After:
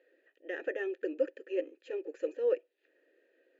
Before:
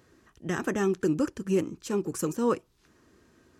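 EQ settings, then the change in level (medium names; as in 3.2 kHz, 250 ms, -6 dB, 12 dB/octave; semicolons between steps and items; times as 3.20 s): vowel filter e; brick-wall FIR band-pass 260–7300 Hz; peaking EQ 5.7 kHz -14.5 dB 0.28 oct; +5.0 dB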